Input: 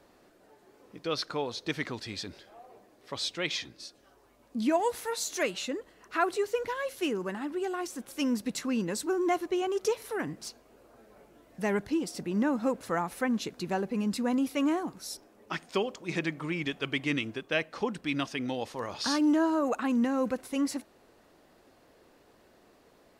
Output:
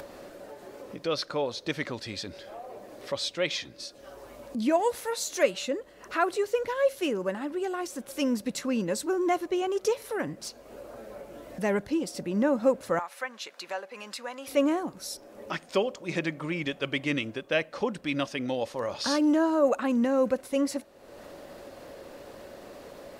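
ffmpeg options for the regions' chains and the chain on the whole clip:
-filter_complex "[0:a]asettb=1/sr,asplit=3[s0][s1][s2];[s0]atrim=end=12.994[s3];[s1]atrim=start=12.99:end=14.48,asetpts=PTS-STARTPTS,afade=t=in:d=0.004:c=qsin,afade=t=out:st=1.486:d=0.004:c=qsin,highpass=1000,highshelf=f=6800:g=-9[s4];[s2]atrim=start=14.476[s5];[s3][s4]acrossfade=d=0.004:c1=hsin:c2=qsin[s6];[s6][s5]acrossfade=d=0.004:c1=qsin:c2=hsin,equalizer=f=560:t=o:w=0.2:g=11.5,acompressor=mode=upward:threshold=0.02:ratio=2.5,volume=1.12"

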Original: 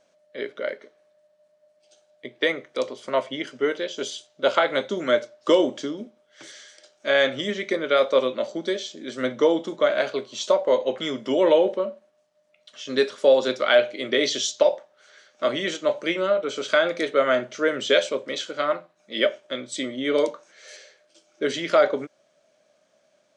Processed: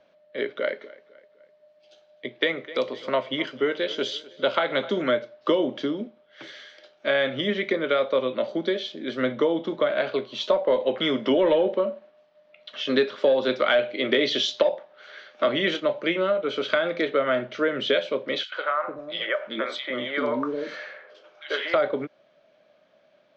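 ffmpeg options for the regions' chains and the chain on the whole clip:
-filter_complex "[0:a]asettb=1/sr,asplit=3[s0][s1][s2];[s0]atrim=end=0.504[s3];[s1]atrim=start=0.5:end=5.02,asetpts=PTS-STARTPTS,afade=t=in:d=0.004:c=qsin,afade=t=out:st=4.516:d=0.004:c=qsin,aemphasis=mode=production:type=cd,asplit=2[s4][s5];[s5]adelay=253,lowpass=f=3900:p=1,volume=0.0891,asplit=2[s6][s7];[s7]adelay=253,lowpass=f=3900:p=1,volume=0.47,asplit=2[s8][s9];[s9]adelay=253,lowpass=f=3900:p=1,volume=0.47[s10];[s4][s6][s8][s10]amix=inputs=4:normalize=0,atrim=end_sample=199332[s11];[s2]atrim=start=5.016[s12];[s3][s11]acrossfade=d=0.004:c1=hsin:c2=qsin[s13];[s13][s12]acrossfade=d=0.004:c1=qsin:c2=hsin,asettb=1/sr,asplit=3[s14][s15][s16];[s14]atrim=end=10.514[s17];[s15]atrim=start=10.51:end=15.8,asetpts=PTS-STARTPTS,afade=t=in:d=0.004:c=qsin,afade=t=out:st=5.286:d=0.004:c=qsin,acontrast=33,equalizer=f=69:w=0.77:g=-11.5[s18];[s16]atrim=start=15.796[s19];[s17][s18]acrossfade=d=0.004:c1=hsin:c2=qsin[s20];[s20][s19]acrossfade=d=0.004:c1=qsin:c2=hsin,asettb=1/sr,asplit=3[s21][s22][s23];[s21]atrim=end=18.434[s24];[s22]atrim=start=18.43:end=21.74,asetpts=PTS-STARTPTS,afade=t=in:d=0.004:c=qsin,afade=t=out:st=3.306:d=0.004:c=qsin,equalizer=f=1200:w=0.67:g=12,acompressor=threshold=0.0562:ratio=2.5:attack=3.2:release=140:knee=1:detection=peak,acrossover=split=430|2600[s25][s26][s27];[s26]adelay=90[s28];[s25]adelay=390[s29];[s29][s28][s27]amix=inputs=3:normalize=0,atrim=end_sample=145971[s30];[s23]atrim=start=21.736[s31];[s24][s30]acrossfade=d=0.004:c1=hsin:c2=qsin[s32];[s32][s31]acrossfade=d=0.004:c1=qsin:c2=hsin,lowpass=f=3900:w=0.5412,lowpass=f=3900:w=1.3066,acrossover=split=190[s33][s34];[s34]acompressor=threshold=0.0562:ratio=3[s35];[s33][s35]amix=inputs=2:normalize=0,volume=1.5"

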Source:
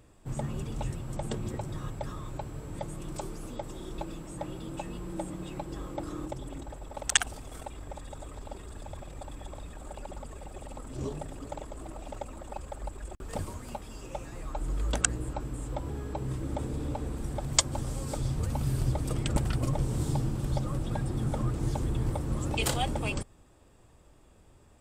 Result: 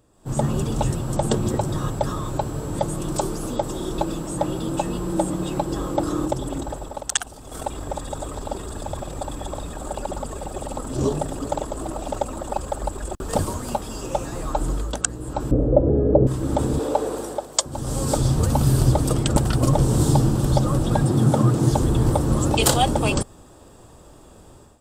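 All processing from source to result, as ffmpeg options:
-filter_complex "[0:a]asettb=1/sr,asplit=3[s0][s1][s2];[s0]atrim=end=15.514[s3];[s1]atrim=start=15.51:end=16.27,asetpts=PTS-STARTPTS,afade=t=in:d=0.004:c=qsin,afade=t=out:st=0.756:d=0.004:c=qsin,lowpass=1200,lowshelf=f=730:t=q:w=3:g=9[s4];[s2]atrim=start=16.266[s5];[s3][s4]acrossfade=d=0.004:c1=hsin:c2=qsin[s6];[s6][s5]acrossfade=d=0.004:c1=qsin:c2=hsin,asettb=1/sr,asplit=3[s7][s8][s9];[s7]atrim=end=16.794[s10];[s8]atrim=start=16.79:end=17.66,asetpts=PTS-STARTPTS,afade=t=in:d=0.004:c=qsin,afade=t=out:st=0.866:d=0.004:c=qsin,highpass=f=460:t=q:w=1.7,aeval=exprs='val(0)+0.00355*(sin(2*PI*50*n/s)+sin(2*PI*2*50*n/s)/2+sin(2*PI*3*50*n/s)/3+sin(2*PI*4*50*n/s)/4+sin(2*PI*5*50*n/s)/5)':c=same[s11];[s9]atrim=start=17.656[s12];[s10][s11]acrossfade=d=0.004:c1=hsin:c2=qsin[s13];[s13][s12]acrossfade=d=0.004:c1=qsin:c2=hsin,asettb=1/sr,asplit=3[s14][s15][s16];[s14]atrim=end=21.034[s17];[s15]atrim=start=21.03:end=21.71,asetpts=PTS-STARTPTS,afade=t=in:d=0.004:c=qsin,afade=t=out:st=0.676:d=0.004:c=qsin,highpass=f=110:w=0.5412,highpass=f=110:w=1.3066,lowshelf=f=170:g=5.5[s18];[s16]atrim=start=21.706[s19];[s17][s18]acrossfade=d=0.004:c1=hsin:c2=qsin[s20];[s20][s19]acrossfade=d=0.004:c1=qsin:c2=hsin,lowshelf=f=110:g=-7.5,dynaudnorm=f=110:g=5:m=5.62,equalizer=f=2200:w=2:g=-9.5"

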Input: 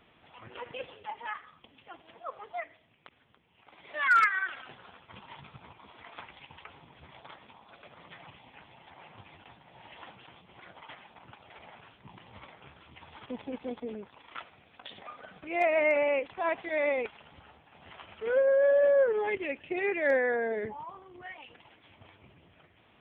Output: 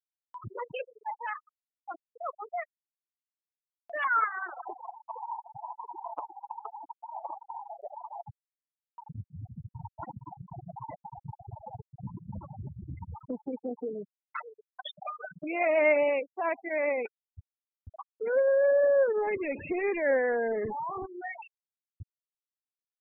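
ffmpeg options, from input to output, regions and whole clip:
-filter_complex "[0:a]asettb=1/sr,asplit=3[s0][s1][s2];[s0]atrim=end=4.044[s3];[s1]atrim=start=4.04:end=8.21,asetpts=PTS-STARTPTS,afade=t=in:d=0.004:c=qsin,afade=t=out:st=4.166:d=0.004:c=qsin,lowpass=f=900:t=q:w=2.9,lowshelf=f=240:t=q:w=3:g=-7[s4];[s2]atrim=start=8.206[s5];[s3][s4]acrossfade=d=0.004:c1=hsin:c2=qsin[s6];[s6][s5]acrossfade=d=0.004:c1=qsin:c2=hsin,asettb=1/sr,asplit=3[s7][s8][s9];[s7]atrim=end=9.064[s10];[s8]atrim=start=9.06:end=13.15,asetpts=PTS-STARTPTS,afade=t=in:d=0.004:c=qsin,afade=t=out:st=4.086:d=0.004:c=qsin,lowshelf=f=440:g=6.5,aecho=1:1:240|456|650.4|825.4|982.8:0.631|0.398|0.251|0.158|0.1,atrim=end_sample=180369[s11];[s9]atrim=start=13.146[s12];[s10][s11]acrossfade=d=0.004:c1=hsin:c2=qsin[s13];[s13][s12]acrossfade=d=0.004:c1=qsin:c2=hsin,asettb=1/sr,asplit=3[s14][s15][s16];[s14]atrim=end=13.744[s17];[s15]atrim=start=13.74:end=16.1,asetpts=PTS-STARTPTS,afade=t=in:d=0.004:c=qsin,afade=t=out:st=2.356:d=0.004:c=qsin,aecho=1:1:6.6:0.46,atrim=end_sample=104076,aecho=1:1:606:0.15,atrim=end_sample=104076[s18];[s16]atrim=start=16.096[s19];[s17][s18]acrossfade=d=0.004:c1=hsin:c2=qsin[s20];[s20][s19]acrossfade=d=0.004:c1=qsin:c2=hsin,asettb=1/sr,asplit=3[s21][s22][s23];[s21]atrim=end=19.164[s24];[s22]atrim=start=19.16:end=21.06,asetpts=PTS-STARTPTS,afade=t=in:d=0.004:c=qsin,afade=t=out:st=1.896:d=0.004:c=qsin,aeval=exprs='val(0)+0.5*0.0188*sgn(val(0))':c=same,highshelf=f=2100:g=-6[s25];[s23]atrim=start=21.056[s26];[s24][s25]acrossfade=d=0.004:c1=hsin:c2=qsin[s27];[s27][s26]acrossfade=d=0.004:c1=qsin:c2=hsin,lowpass=f=3900:p=1,afftfilt=real='re*gte(hypot(re,im),0.02)':imag='im*gte(hypot(re,im),0.02)':win_size=1024:overlap=0.75,acompressor=mode=upward:threshold=0.0355:ratio=2.5"

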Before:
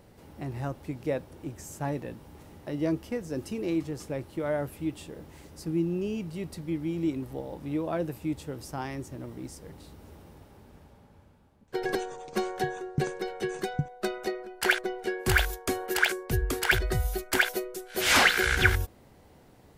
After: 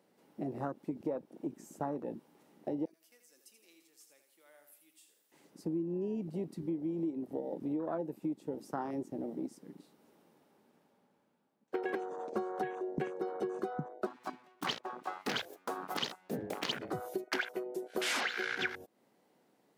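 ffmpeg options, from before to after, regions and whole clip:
-filter_complex "[0:a]asettb=1/sr,asplit=3[s0][s1][s2];[s0]atrim=end=2.854[s3];[s1]atrim=start=2.85:end=5.32,asetpts=PTS-STARTPTS,afade=t=in:d=0.004:c=qsin,afade=t=out:st=2.466:d=0.004:c=qsin,aderivative,bandreject=f=950:w=23,aecho=1:1:82|164|246|328|410:0.398|0.167|0.0702|0.0295|0.0124,atrim=end_sample=108927[s4];[s2]atrim=start=5.316[s5];[s3][s4]acrossfade=d=0.004:c1=hsin:c2=qsin[s6];[s6][s5]acrossfade=d=0.004:c1=qsin:c2=hsin,asettb=1/sr,asplit=3[s7][s8][s9];[s7]atrim=end=14.064[s10];[s8]atrim=start=14.06:end=16.93,asetpts=PTS-STARTPTS,afade=t=in:d=0.004:c=qsin,afade=t=out:st=2.866:d=0.004:c=qsin,equalizer=f=390:w=0.53:g=-3.5,aeval=exprs='abs(val(0))':c=same[s11];[s9]atrim=start=16.926[s12];[s10][s11]acrossfade=d=0.004:c1=hsin:c2=qsin[s13];[s13][s12]acrossfade=d=0.004:c1=qsin:c2=hsin,highpass=f=190:w=0.5412,highpass=f=190:w=1.3066,afwtdn=0.0158,acompressor=threshold=0.0141:ratio=6,volume=1.58"

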